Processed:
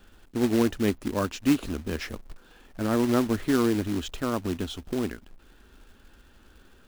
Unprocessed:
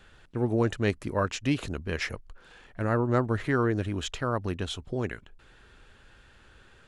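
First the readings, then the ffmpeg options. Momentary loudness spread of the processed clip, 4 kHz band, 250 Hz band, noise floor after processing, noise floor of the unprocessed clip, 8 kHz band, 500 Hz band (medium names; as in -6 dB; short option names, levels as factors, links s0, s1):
10 LU, +0.5 dB, +5.5 dB, -56 dBFS, -57 dBFS, +4.0 dB, +0.5 dB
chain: -af "equalizer=f=125:t=o:w=1:g=-11,equalizer=f=250:t=o:w=1:g=6,equalizer=f=500:t=o:w=1:g=-5,equalizer=f=1000:t=o:w=1:g=-3,equalizer=f=2000:t=o:w=1:g=-9,equalizer=f=4000:t=o:w=1:g=-3,equalizer=f=8000:t=o:w=1:g=-8,acrusher=bits=3:mode=log:mix=0:aa=0.000001,volume=1.58"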